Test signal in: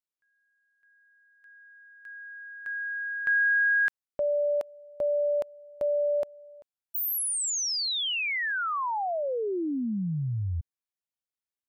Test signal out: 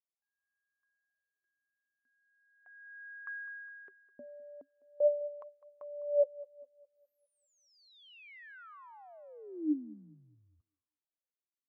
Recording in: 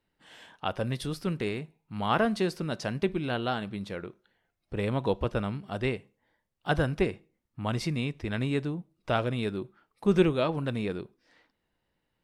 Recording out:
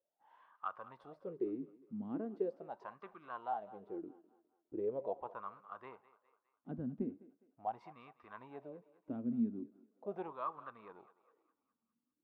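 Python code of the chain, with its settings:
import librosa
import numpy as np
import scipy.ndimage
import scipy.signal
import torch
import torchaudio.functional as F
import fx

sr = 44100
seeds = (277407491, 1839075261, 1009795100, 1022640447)

y = fx.high_shelf(x, sr, hz=2600.0, db=-8.0)
y = fx.wah_lfo(y, sr, hz=0.4, low_hz=230.0, high_hz=1200.0, q=12.0)
y = fx.echo_thinned(y, sr, ms=205, feedback_pct=49, hz=420.0, wet_db=-17.0)
y = F.gain(torch.from_numpy(y), 4.5).numpy()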